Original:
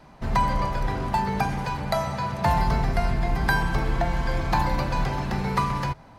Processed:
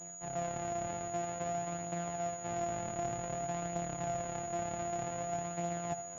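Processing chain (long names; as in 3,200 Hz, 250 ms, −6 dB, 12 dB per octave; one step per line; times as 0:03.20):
samples sorted by size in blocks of 256 samples
high-pass filter 91 Hz 12 dB per octave
parametric band 690 Hz +15 dB 0.26 octaves
reversed playback
downward compressor 6 to 1, threshold −31 dBFS, peak gain reduction 18 dB
reversed playback
flanger 0.53 Hz, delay 6 ms, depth 3.4 ms, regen +44%
on a send: flutter between parallel walls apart 11.2 metres, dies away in 0.28 s
on the sum: switching amplifier with a slow clock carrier 6,800 Hz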